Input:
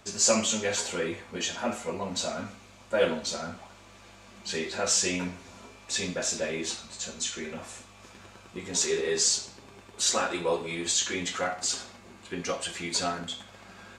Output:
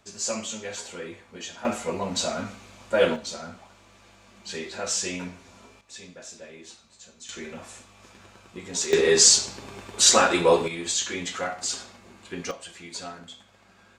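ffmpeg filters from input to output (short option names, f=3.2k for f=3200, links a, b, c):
-af "asetnsamples=n=441:p=0,asendcmd='1.65 volume volume 4dB;3.16 volume volume -2.5dB;5.81 volume volume -13dB;7.29 volume volume -1dB;8.93 volume volume 9dB;10.68 volume volume 0dB;12.51 volume volume -8dB',volume=-6.5dB"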